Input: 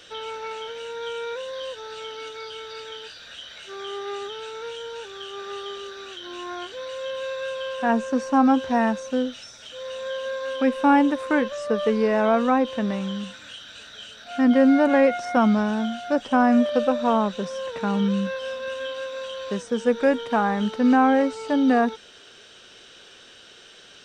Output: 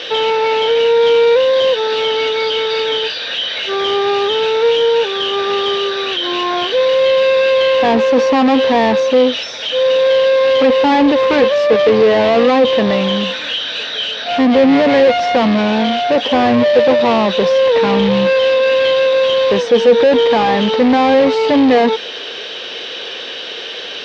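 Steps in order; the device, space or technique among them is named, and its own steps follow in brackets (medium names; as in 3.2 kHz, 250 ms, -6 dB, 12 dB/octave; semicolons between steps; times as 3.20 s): overdrive pedal into a guitar cabinet (overdrive pedal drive 31 dB, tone 5.9 kHz, clips at -6.5 dBFS; cabinet simulation 80–4600 Hz, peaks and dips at 280 Hz +3 dB, 480 Hz +7 dB, 1.4 kHz -9 dB)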